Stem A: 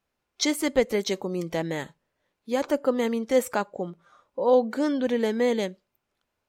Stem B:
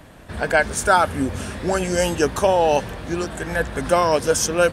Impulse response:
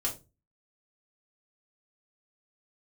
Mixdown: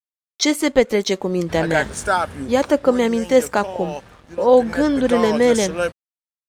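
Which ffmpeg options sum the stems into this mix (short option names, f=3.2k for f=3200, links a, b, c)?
-filter_complex "[0:a]volume=-2.5dB[a];[1:a]adelay=1200,volume=-7dB,afade=t=out:st=2.09:d=0.58:silence=0.375837,afade=t=in:st=4.44:d=0.24:silence=0.446684[b];[a][b]amix=inputs=2:normalize=0,lowpass=11k,dynaudnorm=f=130:g=5:m=12dB,aeval=exprs='sgn(val(0))*max(abs(val(0))-0.00447,0)':c=same"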